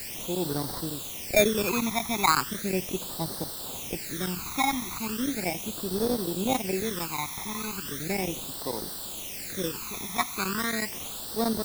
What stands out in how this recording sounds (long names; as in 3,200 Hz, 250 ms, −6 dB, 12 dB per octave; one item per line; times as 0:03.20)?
aliases and images of a low sample rate 3,000 Hz, jitter 0%
chopped level 11 Hz, duty 85%
a quantiser's noise floor 6 bits, dither triangular
phaser sweep stages 12, 0.37 Hz, lowest notch 490–2,400 Hz